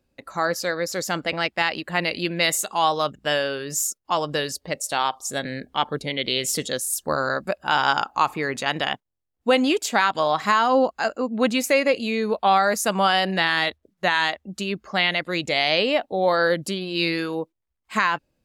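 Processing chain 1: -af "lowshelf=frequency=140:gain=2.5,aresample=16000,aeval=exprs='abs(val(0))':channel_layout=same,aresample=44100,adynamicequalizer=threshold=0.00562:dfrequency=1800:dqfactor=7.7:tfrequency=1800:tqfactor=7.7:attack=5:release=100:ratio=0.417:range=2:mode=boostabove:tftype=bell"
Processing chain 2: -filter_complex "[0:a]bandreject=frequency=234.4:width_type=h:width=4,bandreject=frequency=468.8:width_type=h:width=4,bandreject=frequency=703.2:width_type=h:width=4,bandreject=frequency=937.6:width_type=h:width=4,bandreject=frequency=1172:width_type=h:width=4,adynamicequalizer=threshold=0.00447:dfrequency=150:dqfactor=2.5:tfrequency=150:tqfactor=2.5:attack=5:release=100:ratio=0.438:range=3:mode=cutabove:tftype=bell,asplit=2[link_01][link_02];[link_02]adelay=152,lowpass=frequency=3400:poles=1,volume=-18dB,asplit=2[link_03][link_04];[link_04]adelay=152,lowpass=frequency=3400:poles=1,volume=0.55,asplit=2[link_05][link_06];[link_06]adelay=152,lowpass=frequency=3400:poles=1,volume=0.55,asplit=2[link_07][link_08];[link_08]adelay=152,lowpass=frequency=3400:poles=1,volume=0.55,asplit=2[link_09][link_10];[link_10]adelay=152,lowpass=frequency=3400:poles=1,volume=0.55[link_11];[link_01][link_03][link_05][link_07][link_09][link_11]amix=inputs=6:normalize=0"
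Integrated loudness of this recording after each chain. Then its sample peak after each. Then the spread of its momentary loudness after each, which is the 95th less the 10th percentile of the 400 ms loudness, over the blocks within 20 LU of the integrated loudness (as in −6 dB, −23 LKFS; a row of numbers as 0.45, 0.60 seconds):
−26.0, −23.0 LKFS; −6.5, −6.5 dBFS; 9, 7 LU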